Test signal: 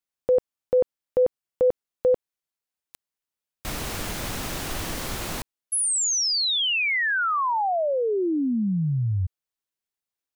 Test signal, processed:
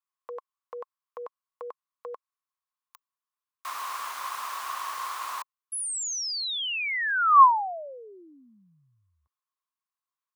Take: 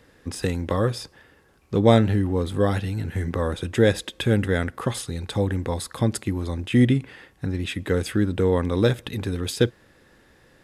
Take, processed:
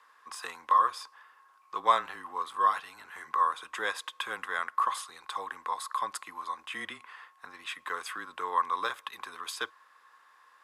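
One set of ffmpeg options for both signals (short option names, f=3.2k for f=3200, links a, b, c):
-af "highpass=f=1.1k:t=q:w=11,afreqshift=-21,volume=-8dB"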